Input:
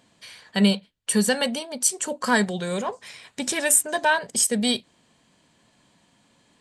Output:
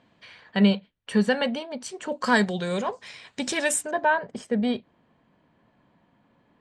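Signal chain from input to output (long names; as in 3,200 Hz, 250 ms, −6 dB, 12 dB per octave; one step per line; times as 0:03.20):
low-pass filter 2,700 Hz 12 dB per octave, from 0:02.12 5,800 Hz, from 0:03.91 1,600 Hz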